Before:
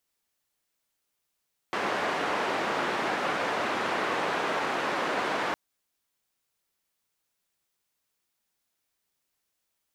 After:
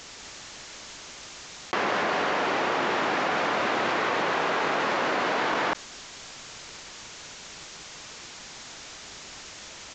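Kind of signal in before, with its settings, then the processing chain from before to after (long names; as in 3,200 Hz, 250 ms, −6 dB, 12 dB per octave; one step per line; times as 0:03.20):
band-limited noise 270–1,400 Hz, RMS −29 dBFS 3.81 s
on a send: single-tap delay 193 ms −4.5 dB
on the sum: downsampling to 16,000 Hz
envelope flattener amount 100%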